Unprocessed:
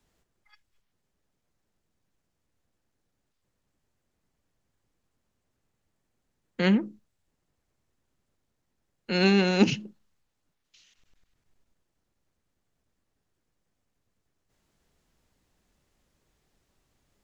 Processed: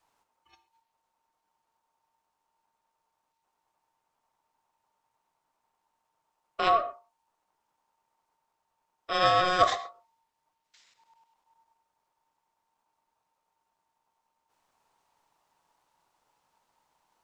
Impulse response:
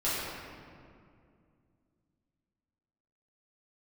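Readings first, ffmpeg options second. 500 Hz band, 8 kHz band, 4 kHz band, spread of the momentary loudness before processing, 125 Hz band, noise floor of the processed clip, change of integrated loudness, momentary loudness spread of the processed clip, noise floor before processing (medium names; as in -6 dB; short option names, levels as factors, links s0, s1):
-1.5 dB, no reading, 0.0 dB, 17 LU, -14.5 dB, -81 dBFS, -1.0 dB, 14 LU, -79 dBFS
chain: -filter_complex "[0:a]aeval=exprs='val(0)*sin(2*PI*910*n/s)':c=same,asplit=2[s0][s1];[1:a]atrim=start_sample=2205,atrim=end_sample=6174[s2];[s1][s2]afir=irnorm=-1:irlink=0,volume=0.158[s3];[s0][s3]amix=inputs=2:normalize=0"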